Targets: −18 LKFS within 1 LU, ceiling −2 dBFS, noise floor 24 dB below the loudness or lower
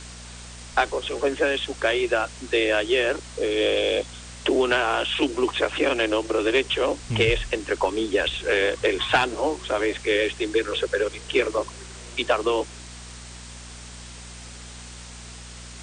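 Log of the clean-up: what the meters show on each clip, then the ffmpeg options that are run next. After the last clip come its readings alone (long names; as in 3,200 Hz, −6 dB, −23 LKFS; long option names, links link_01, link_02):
mains hum 60 Hz; hum harmonics up to 240 Hz; level of the hum −41 dBFS; background noise floor −41 dBFS; target noise floor −48 dBFS; integrated loudness −23.5 LKFS; sample peak −9.0 dBFS; target loudness −18.0 LKFS
→ -af "bandreject=frequency=60:width_type=h:width=4,bandreject=frequency=120:width_type=h:width=4,bandreject=frequency=180:width_type=h:width=4,bandreject=frequency=240:width_type=h:width=4"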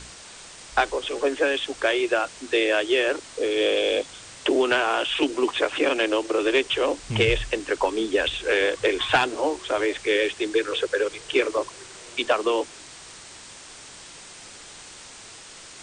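mains hum none found; background noise floor −44 dBFS; target noise floor −48 dBFS
→ -af "afftdn=noise_reduction=6:noise_floor=-44"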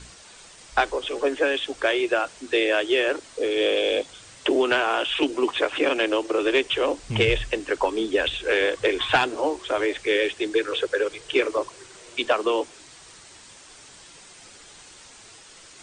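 background noise floor −48 dBFS; integrated loudness −23.5 LKFS; sample peak −9.0 dBFS; target loudness −18.0 LKFS
→ -af "volume=5.5dB"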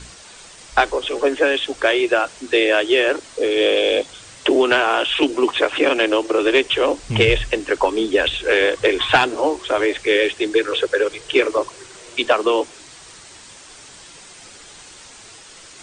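integrated loudness −18.0 LKFS; sample peak −3.5 dBFS; background noise floor −42 dBFS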